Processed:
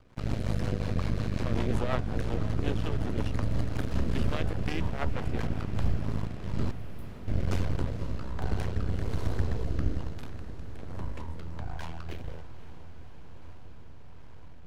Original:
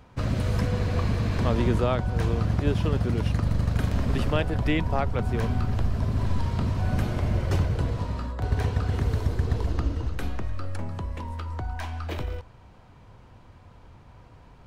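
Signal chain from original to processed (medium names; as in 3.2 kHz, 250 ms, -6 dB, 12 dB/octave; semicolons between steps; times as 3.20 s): 6.71–7.28 s: inverse Chebyshev high-pass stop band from 2.8 kHz, stop band 70 dB; half-wave rectifier; rotary cabinet horn 5.5 Hz, later 1.2 Hz, at 5.45 s; echo that smears into a reverb 499 ms, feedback 78%, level -14 dB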